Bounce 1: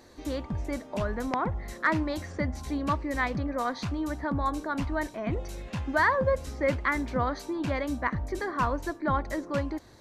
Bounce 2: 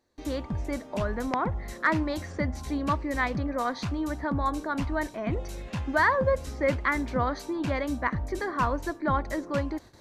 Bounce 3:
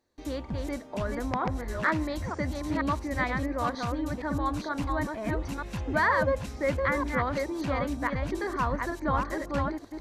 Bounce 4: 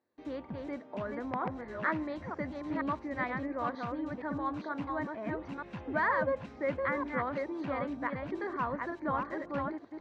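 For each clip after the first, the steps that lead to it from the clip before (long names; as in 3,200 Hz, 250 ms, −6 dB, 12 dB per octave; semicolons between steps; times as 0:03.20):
noise gate with hold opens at −44 dBFS; level +1 dB
delay that plays each chunk backwards 469 ms, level −3.5 dB; level −2.5 dB
band-pass filter 150–2,500 Hz; level −4.5 dB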